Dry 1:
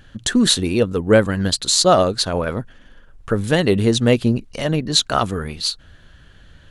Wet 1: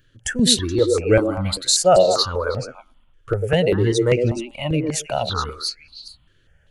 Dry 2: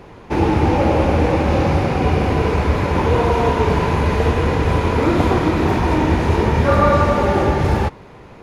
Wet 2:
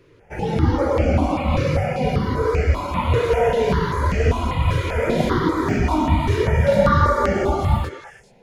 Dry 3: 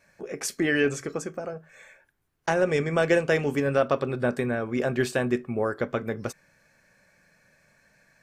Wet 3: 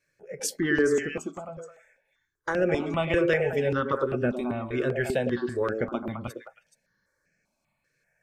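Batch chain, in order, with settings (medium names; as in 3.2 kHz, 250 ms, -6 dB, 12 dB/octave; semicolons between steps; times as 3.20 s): spectral noise reduction 11 dB; repeats whose band climbs or falls 106 ms, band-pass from 370 Hz, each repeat 1.4 oct, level -1 dB; stepped phaser 5.1 Hz 210–3700 Hz; trim +1 dB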